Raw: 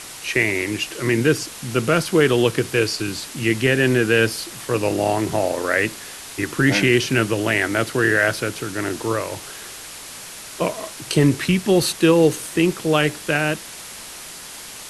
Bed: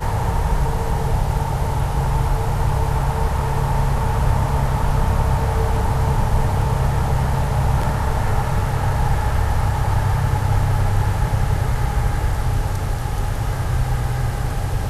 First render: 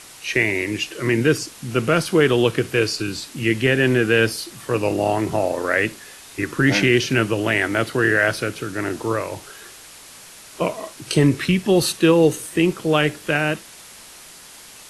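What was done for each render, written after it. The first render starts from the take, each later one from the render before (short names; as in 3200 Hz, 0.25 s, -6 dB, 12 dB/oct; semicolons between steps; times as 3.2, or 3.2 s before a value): noise print and reduce 6 dB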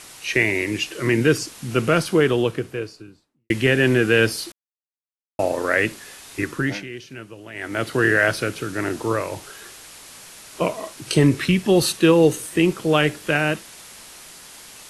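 1.83–3.5 studio fade out; 4.52–5.39 mute; 6.4–7.97 dip -18.5 dB, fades 0.44 s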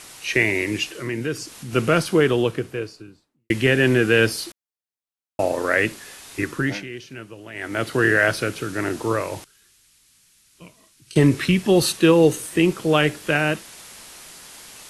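0.89–1.73 compressor 1.5:1, threshold -37 dBFS; 9.44–11.16 passive tone stack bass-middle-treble 6-0-2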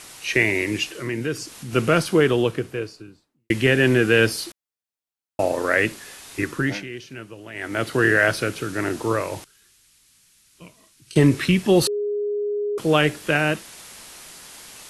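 11.87–12.78 bleep 413 Hz -21.5 dBFS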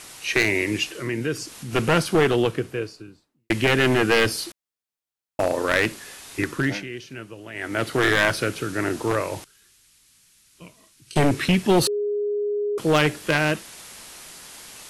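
one-sided fold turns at -13 dBFS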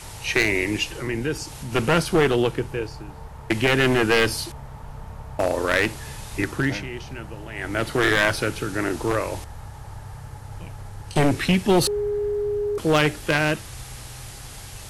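add bed -19.5 dB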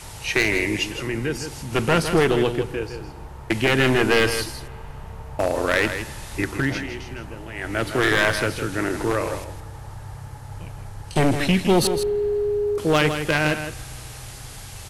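echo 0.16 s -9 dB; spring tank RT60 2.9 s, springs 42/60 ms, chirp 25 ms, DRR 20 dB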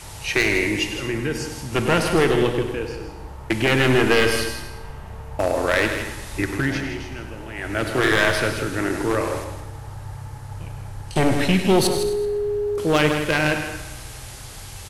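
tapped delay 0.1/0.222 s -10.5/-18 dB; non-linear reverb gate 0.4 s falling, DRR 10 dB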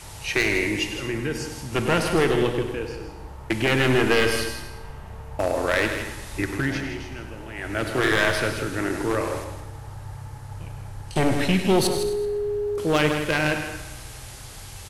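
gain -2.5 dB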